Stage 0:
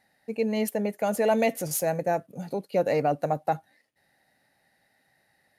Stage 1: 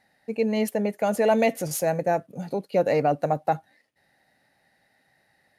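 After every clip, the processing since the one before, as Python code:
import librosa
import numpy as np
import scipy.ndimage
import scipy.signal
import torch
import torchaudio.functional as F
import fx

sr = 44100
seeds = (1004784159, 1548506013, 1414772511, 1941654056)

y = fx.high_shelf(x, sr, hz=10000.0, db=-8.0)
y = y * 10.0 ** (2.5 / 20.0)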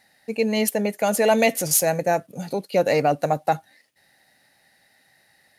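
y = fx.high_shelf(x, sr, hz=2400.0, db=11.0)
y = y * 10.0 ** (1.5 / 20.0)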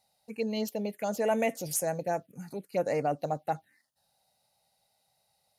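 y = fx.env_phaser(x, sr, low_hz=300.0, high_hz=4400.0, full_db=-15.0)
y = y * 10.0 ** (-9.0 / 20.0)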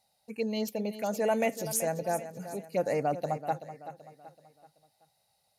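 y = fx.echo_feedback(x, sr, ms=381, feedback_pct=42, wet_db=-12.5)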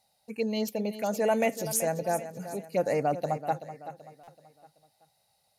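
y = fx.buffer_glitch(x, sr, at_s=(4.23,), block=256, repeats=7)
y = y * 10.0 ** (2.0 / 20.0)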